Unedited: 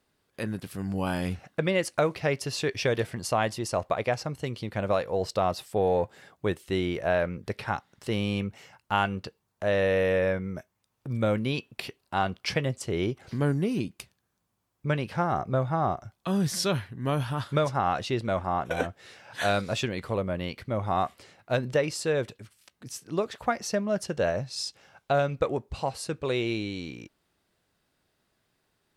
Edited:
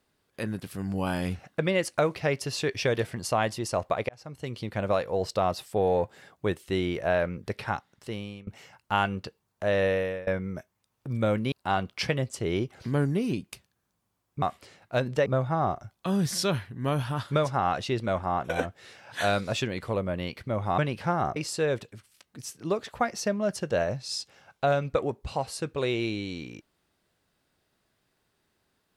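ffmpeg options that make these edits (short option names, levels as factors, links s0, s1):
-filter_complex "[0:a]asplit=9[s0][s1][s2][s3][s4][s5][s6][s7][s8];[s0]atrim=end=4.09,asetpts=PTS-STARTPTS,afade=t=out:st=4.086:d=0.004:c=hsin[s9];[s1]atrim=start=4.09:end=8.47,asetpts=PTS-STARTPTS,afade=t=in:d=0.52,afade=t=out:st=3.6:d=0.78:silence=0.0707946[s10];[s2]atrim=start=8.47:end=10.27,asetpts=PTS-STARTPTS,afade=t=in:d=0.004:c=hsin:silence=0.0707946,afade=t=out:st=1.39:d=0.41:silence=0.0749894[s11];[s3]atrim=start=10.27:end=11.522,asetpts=PTS-STARTPTS,afade=t=in:d=0.004:c=hsin:silence=0.0749894[s12];[s4]atrim=start=11.988:end=14.892[s13];[s5]atrim=start=20.988:end=21.832[s14];[s6]atrim=start=15.468:end=20.992[s15];[s7]atrim=start=14.888:end=15.472[s16];[s8]atrim=start=21.828[s17];[s9][s10][s11][s12]concat=n=4:v=0:a=1[s18];[s18][s13]acrossfade=d=0.004:c1=hsin:c2=hsin[s19];[s19][s14]acrossfade=d=0.004:c1=hsin:c2=hsin[s20];[s20][s15]acrossfade=d=0.004:c1=hsin:c2=hsin[s21];[s21][s16]acrossfade=d=0.004:c1=hsin:c2=hsin[s22];[s22][s17]acrossfade=d=0.004:c1=hsin:c2=hsin"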